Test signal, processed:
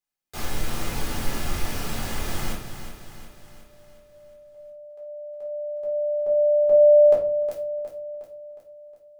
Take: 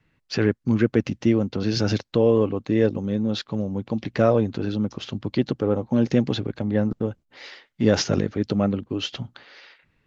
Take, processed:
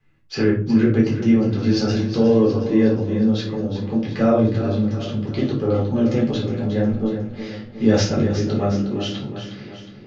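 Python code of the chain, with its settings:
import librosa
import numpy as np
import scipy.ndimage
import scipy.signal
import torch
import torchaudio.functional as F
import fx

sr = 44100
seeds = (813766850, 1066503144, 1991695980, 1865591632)

y = fx.echo_feedback(x, sr, ms=362, feedback_pct=53, wet_db=-10.0)
y = fx.room_shoebox(y, sr, seeds[0], volume_m3=300.0, walls='furnished', distance_m=3.9)
y = F.gain(torch.from_numpy(y), -6.0).numpy()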